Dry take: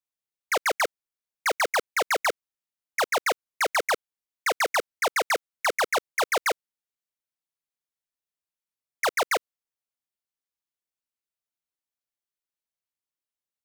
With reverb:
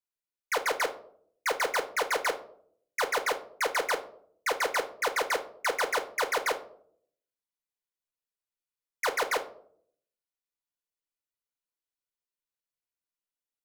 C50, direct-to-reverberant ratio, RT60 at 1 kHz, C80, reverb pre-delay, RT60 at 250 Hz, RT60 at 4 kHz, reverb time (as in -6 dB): 13.5 dB, 4.5 dB, 0.55 s, 18.5 dB, 4 ms, 0.85 s, 0.35 s, 0.65 s